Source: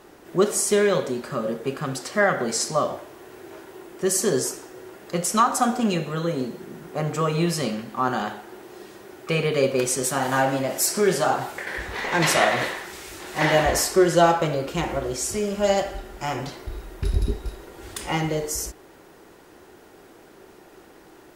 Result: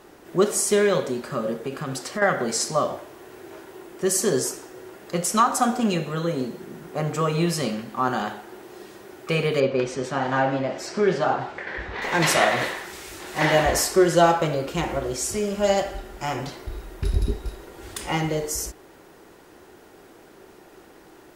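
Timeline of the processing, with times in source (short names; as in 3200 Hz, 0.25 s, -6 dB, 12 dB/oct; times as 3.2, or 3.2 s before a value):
1.53–2.22 compressor 4:1, threshold -24 dBFS
9.6–12.02 air absorption 180 m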